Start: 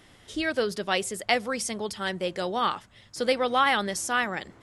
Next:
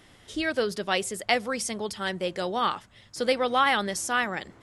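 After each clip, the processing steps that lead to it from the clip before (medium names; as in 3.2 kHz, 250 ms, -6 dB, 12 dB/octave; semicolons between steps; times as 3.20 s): no audible change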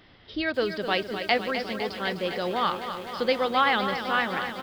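resampled via 11.025 kHz; bit-crushed delay 254 ms, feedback 80%, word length 8-bit, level -9 dB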